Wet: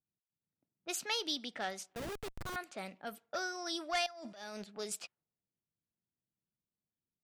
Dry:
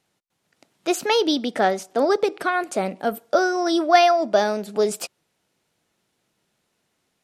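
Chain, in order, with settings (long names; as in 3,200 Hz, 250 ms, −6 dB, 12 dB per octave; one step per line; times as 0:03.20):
low-pass that shuts in the quiet parts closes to 340 Hz, open at −18.5 dBFS
in parallel at −11 dB: sine wavefolder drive 7 dB, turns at −2.5 dBFS
0:04.06–0:04.64: on the sum: compressor whose output falls as the input rises −22 dBFS, ratio −1
guitar amp tone stack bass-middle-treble 5-5-5
0:01.95–0:02.56: comparator with hysteresis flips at −31.5 dBFS
level −8 dB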